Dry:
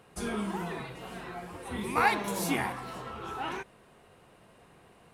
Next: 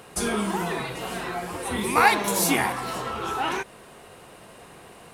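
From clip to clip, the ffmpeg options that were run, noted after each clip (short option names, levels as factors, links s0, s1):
-filter_complex "[0:a]bass=f=250:g=-4,treble=f=4000:g=5,asplit=2[s0][s1];[s1]acompressor=threshold=0.01:ratio=6,volume=0.891[s2];[s0][s2]amix=inputs=2:normalize=0,volume=2"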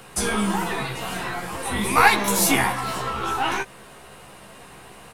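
-filter_complex "[0:a]acrossover=split=270|670|2100[s0][s1][s2][s3];[s1]aeval=exprs='max(val(0),0)':c=same[s4];[s0][s4][s2][s3]amix=inputs=4:normalize=0,asplit=2[s5][s6];[s6]adelay=15,volume=0.562[s7];[s5][s7]amix=inputs=2:normalize=0,volume=1.33"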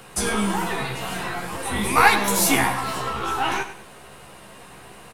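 -af "aecho=1:1:97|194|291:0.251|0.0804|0.0257"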